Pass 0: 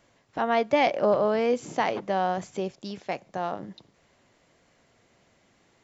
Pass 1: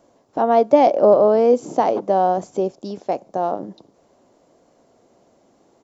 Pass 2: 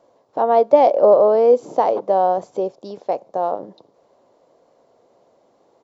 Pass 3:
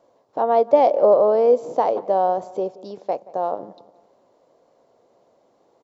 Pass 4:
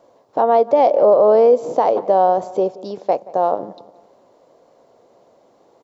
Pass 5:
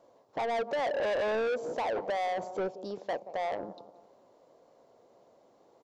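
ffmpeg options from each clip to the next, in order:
ffmpeg -i in.wav -af "firequalizer=gain_entry='entry(110,0);entry(270,11);entry(670,11);entry(1900,-7);entry(5500,3)':delay=0.05:min_phase=1,volume=-1dB" out.wav
ffmpeg -i in.wav -af "equalizer=frequency=125:width_type=o:width=1:gain=5,equalizer=frequency=500:width_type=o:width=1:gain=11,equalizer=frequency=1000:width_type=o:width=1:gain=9,equalizer=frequency=2000:width_type=o:width=1:gain=4,equalizer=frequency=4000:width_type=o:width=1:gain=8,volume=-10.5dB" out.wav
ffmpeg -i in.wav -filter_complex "[0:a]asplit=2[link_01][link_02];[link_02]adelay=177,lowpass=frequency=2300:poles=1,volume=-20dB,asplit=2[link_03][link_04];[link_04]adelay=177,lowpass=frequency=2300:poles=1,volume=0.44,asplit=2[link_05][link_06];[link_06]adelay=177,lowpass=frequency=2300:poles=1,volume=0.44[link_07];[link_01][link_03][link_05][link_07]amix=inputs=4:normalize=0,volume=-2.5dB" out.wav
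ffmpeg -i in.wav -af "alimiter=limit=-11.5dB:level=0:latency=1:release=139,volume=6.5dB" out.wav
ffmpeg -i in.wav -af "asoftclip=type=tanh:threshold=-19.5dB,volume=-8.5dB" out.wav

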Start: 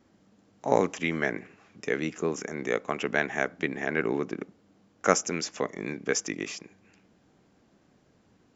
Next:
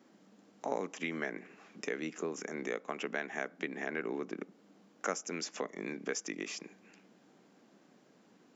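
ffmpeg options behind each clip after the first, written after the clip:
ffmpeg -i in.wav -af "highpass=frequency=180:width=0.5412,highpass=frequency=180:width=1.3066,acompressor=threshold=-39dB:ratio=2.5,volume=1dB" out.wav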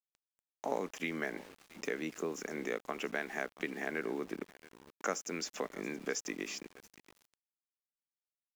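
ffmpeg -i in.wav -af "aecho=1:1:676:0.106,aeval=exprs='val(0)*gte(abs(val(0)),0.00299)':channel_layout=same" out.wav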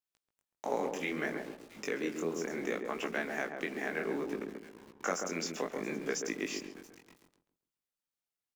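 ffmpeg -i in.wav -filter_complex "[0:a]flanger=delay=17.5:depth=6.6:speed=0.65,asplit=2[link_01][link_02];[link_02]adelay=136,lowpass=frequency=890:poles=1,volume=-3.5dB,asplit=2[link_03][link_04];[link_04]adelay=136,lowpass=frequency=890:poles=1,volume=0.35,asplit=2[link_05][link_06];[link_06]adelay=136,lowpass=frequency=890:poles=1,volume=0.35,asplit=2[link_07][link_08];[link_08]adelay=136,lowpass=frequency=890:poles=1,volume=0.35,asplit=2[link_09][link_10];[link_10]adelay=136,lowpass=frequency=890:poles=1,volume=0.35[link_11];[link_03][link_05][link_07][link_09][link_11]amix=inputs=5:normalize=0[link_12];[link_01][link_12]amix=inputs=2:normalize=0,volume=4.5dB" out.wav

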